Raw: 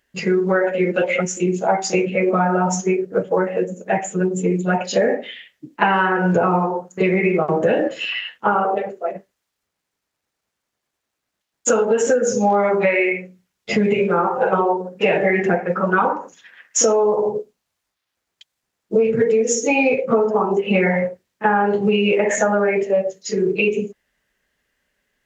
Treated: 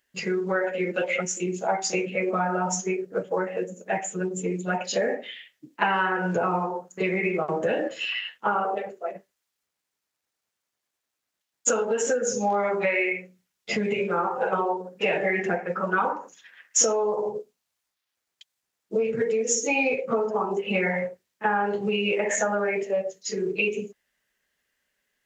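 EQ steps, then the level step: tilt +1.5 dB/oct; -6.5 dB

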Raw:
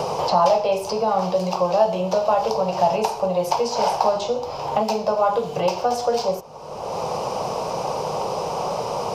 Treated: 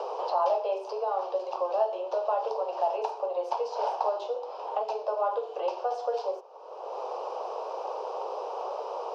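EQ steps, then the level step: steep high-pass 370 Hz 48 dB/oct; LPF 2900 Hz 12 dB/oct; bell 2100 Hz -10.5 dB 0.45 oct; -8.5 dB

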